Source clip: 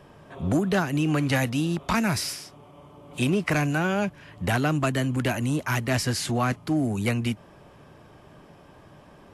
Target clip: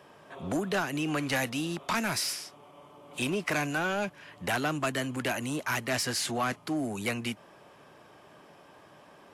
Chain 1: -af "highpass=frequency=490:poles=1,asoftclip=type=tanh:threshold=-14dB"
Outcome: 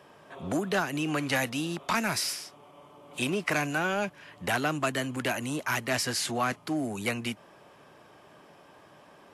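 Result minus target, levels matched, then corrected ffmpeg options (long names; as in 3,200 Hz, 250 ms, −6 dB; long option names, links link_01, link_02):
soft clipping: distortion −10 dB
-af "highpass=frequency=490:poles=1,asoftclip=type=tanh:threshold=-21dB"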